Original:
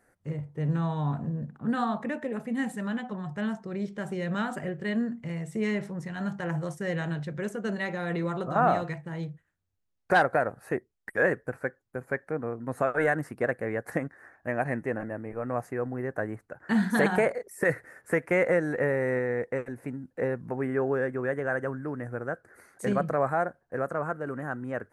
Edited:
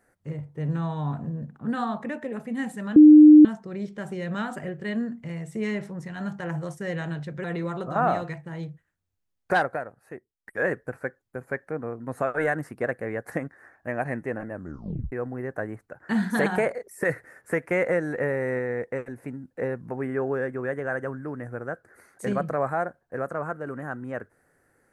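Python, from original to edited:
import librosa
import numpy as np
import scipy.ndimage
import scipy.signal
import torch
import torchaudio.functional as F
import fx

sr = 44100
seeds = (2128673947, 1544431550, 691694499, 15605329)

y = fx.edit(x, sr, fx.bleep(start_s=2.96, length_s=0.49, hz=303.0, db=-6.5),
    fx.cut(start_s=7.44, length_s=0.6),
    fx.fade_down_up(start_s=10.13, length_s=1.19, db=-10.5, fade_s=0.35),
    fx.tape_stop(start_s=15.13, length_s=0.59), tone=tone)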